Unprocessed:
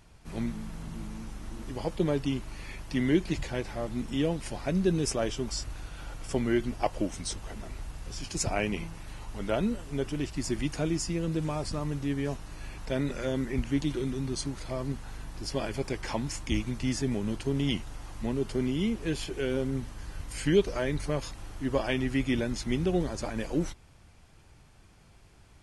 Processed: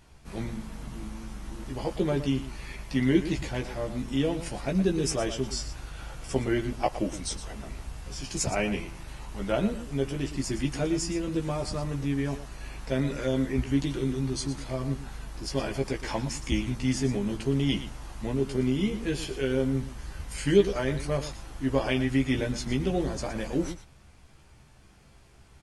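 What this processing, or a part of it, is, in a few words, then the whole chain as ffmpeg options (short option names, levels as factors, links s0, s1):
slapback doubling: -filter_complex "[0:a]asplit=3[s0][s1][s2];[s1]adelay=15,volume=0.631[s3];[s2]adelay=118,volume=0.282[s4];[s0][s3][s4]amix=inputs=3:normalize=0"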